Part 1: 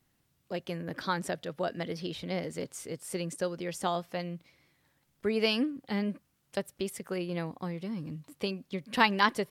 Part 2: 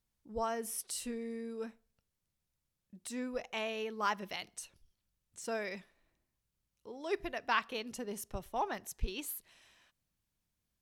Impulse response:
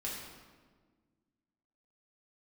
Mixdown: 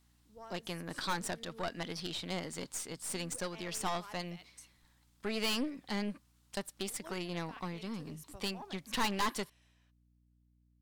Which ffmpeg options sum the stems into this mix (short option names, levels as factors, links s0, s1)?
-filter_complex "[0:a]equalizer=f=125:t=o:w=1:g=-5,equalizer=f=500:t=o:w=1:g=-7,equalizer=f=1000:t=o:w=1:g=6,equalizer=f=4000:t=o:w=1:g=6,equalizer=f=8000:t=o:w=1:g=6,volume=1,asplit=2[s0][s1];[1:a]dynaudnorm=f=170:g=11:m=2.37,alimiter=limit=0.0891:level=0:latency=1:release=235,aeval=exprs='val(0)+0.00251*(sin(2*PI*60*n/s)+sin(2*PI*2*60*n/s)/2+sin(2*PI*3*60*n/s)/3+sin(2*PI*4*60*n/s)/4+sin(2*PI*5*60*n/s)/5)':c=same,volume=0.211[s2];[s1]apad=whole_len=477091[s3];[s2][s3]sidechaincompress=threshold=0.00501:ratio=3:attack=48:release=102[s4];[s0][s4]amix=inputs=2:normalize=0,aeval=exprs='(tanh(28.2*val(0)+0.6)-tanh(0.6))/28.2':c=same"